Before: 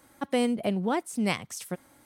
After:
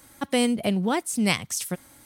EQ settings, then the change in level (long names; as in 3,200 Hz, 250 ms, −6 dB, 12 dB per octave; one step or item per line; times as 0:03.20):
low-shelf EQ 170 Hz +10 dB
high-shelf EQ 2,000 Hz +10.5 dB
0.0 dB